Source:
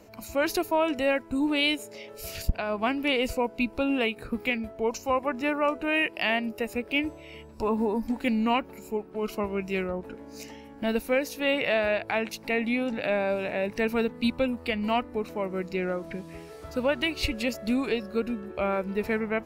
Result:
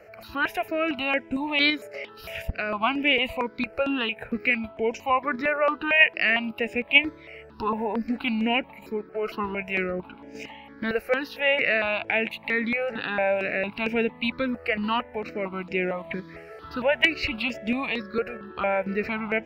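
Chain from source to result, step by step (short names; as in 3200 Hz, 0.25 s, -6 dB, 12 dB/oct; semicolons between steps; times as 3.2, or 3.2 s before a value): tilt +3.5 dB/oct; in parallel at +1.5 dB: level quantiser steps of 21 dB; on the sum: air absorption 390 m; step phaser 4.4 Hz 970–4200 Hz; gain +7 dB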